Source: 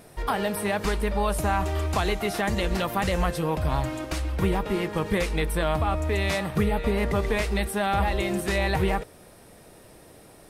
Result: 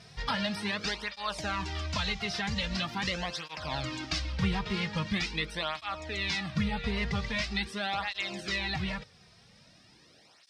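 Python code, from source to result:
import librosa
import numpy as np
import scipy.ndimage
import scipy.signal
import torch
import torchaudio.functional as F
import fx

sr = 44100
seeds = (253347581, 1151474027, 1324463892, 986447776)

y = fx.curve_eq(x, sr, hz=(160.0, 240.0, 410.0, 5200.0, 12000.0), db=(0, -3, -10, 11, -22))
y = fx.rider(y, sr, range_db=10, speed_s=0.5)
y = fx.flanger_cancel(y, sr, hz=0.43, depth_ms=3.7)
y = y * 10.0 ** (-2.5 / 20.0)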